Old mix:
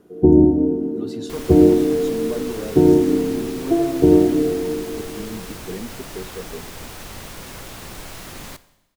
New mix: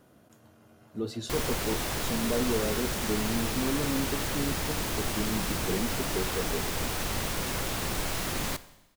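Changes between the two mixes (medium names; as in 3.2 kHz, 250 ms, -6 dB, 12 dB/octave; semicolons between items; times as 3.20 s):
first sound: muted; second sound +4.5 dB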